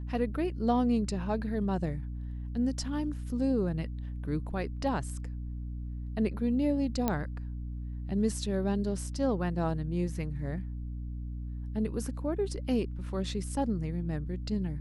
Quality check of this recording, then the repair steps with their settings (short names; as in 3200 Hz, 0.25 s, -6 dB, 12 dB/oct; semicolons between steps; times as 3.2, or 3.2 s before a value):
hum 60 Hz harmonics 5 -37 dBFS
7.08 pop -14 dBFS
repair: de-click; de-hum 60 Hz, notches 5